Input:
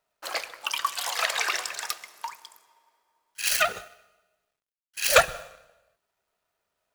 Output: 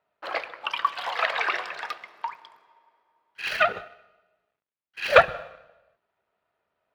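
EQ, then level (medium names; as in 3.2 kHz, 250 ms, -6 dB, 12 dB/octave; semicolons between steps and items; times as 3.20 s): high-pass 110 Hz 6 dB/octave; distance through air 390 m; +5.5 dB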